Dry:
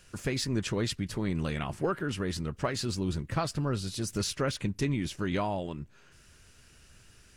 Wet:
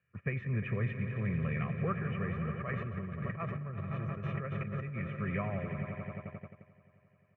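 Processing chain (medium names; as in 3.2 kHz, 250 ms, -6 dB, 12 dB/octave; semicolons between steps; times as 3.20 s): elliptic low-pass 2.3 kHz, stop band 50 dB; peaking EQ 690 Hz -12.5 dB 1.9 oct; comb 1.7 ms, depth 88%; echo with a slow build-up 88 ms, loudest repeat 5, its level -13 dB; gate -39 dBFS, range -15 dB; 2.60–5.07 s: compressor with a negative ratio -36 dBFS, ratio -1; high-pass 100 Hz 24 dB/octave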